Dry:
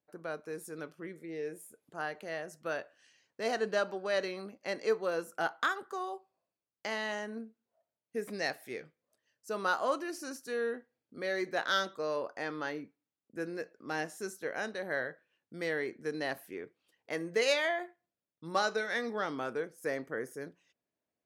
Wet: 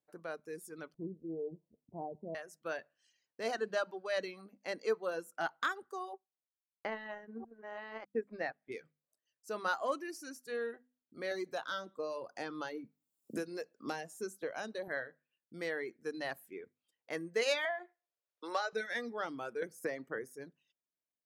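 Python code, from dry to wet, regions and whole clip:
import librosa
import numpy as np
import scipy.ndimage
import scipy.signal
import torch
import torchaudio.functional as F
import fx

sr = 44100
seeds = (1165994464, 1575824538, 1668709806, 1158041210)

y = fx.chain(x, sr, fx.cheby_ripple(hz=1000.0, ripple_db=3),
    fx.tilt_eq(slope=-4.0), at=(0.94, 2.35))
y = fx.chain(y, sr, fx.reverse_delay(ms=658, wet_db=-3),
    fx.lowpass(hz=1800.0, slope=12),
    fx.transient(attack_db=5, sustain_db=-10), at=(6.13, 8.72))
y = fx.chain(y, sr, fx.peak_eq(hz=1900.0, db=-6.5, octaves=0.77),
    fx.band_squash(depth_pct=100), at=(11.31, 14.88))
y = fx.chain(y, sr, fx.highpass(hz=420.0, slope=24),
    fx.air_absorb(metres=59.0),
    fx.band_squash(depth_pct=70), at=(17.65, 18.73))
y = fx.chain(y, sr, fx.highpass(hz=41.0, slope=12),
    fx.band_squash(depth_pct=100), at=(19.62, 20.19))
y = fx.hum_notches(y, sr, base_hz=50, count=5)
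y = fx.dereverb_blind(y, sr, rt60_s=1.4)
y = F.gain(torch.from_numpy(y), -3.0).numpy()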